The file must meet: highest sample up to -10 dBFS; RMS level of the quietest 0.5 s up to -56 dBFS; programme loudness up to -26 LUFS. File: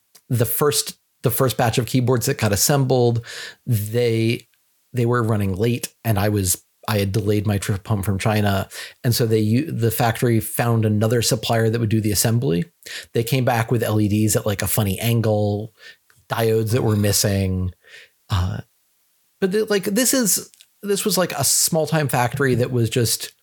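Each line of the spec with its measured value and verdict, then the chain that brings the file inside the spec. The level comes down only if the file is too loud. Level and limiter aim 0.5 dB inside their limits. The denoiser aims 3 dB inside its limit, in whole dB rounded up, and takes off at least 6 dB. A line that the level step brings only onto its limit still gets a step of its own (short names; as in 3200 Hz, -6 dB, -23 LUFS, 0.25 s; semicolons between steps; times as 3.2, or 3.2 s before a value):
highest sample -4.0 dBFS: fail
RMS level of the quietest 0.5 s -64 dBFS: OK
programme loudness -20.0 LUFS: fail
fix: gain -6.5 dB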